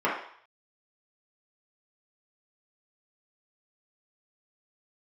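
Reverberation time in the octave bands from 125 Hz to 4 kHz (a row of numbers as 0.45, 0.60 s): 0.35, 0.45, 0.55, 0.65, 0.60, 0.65 s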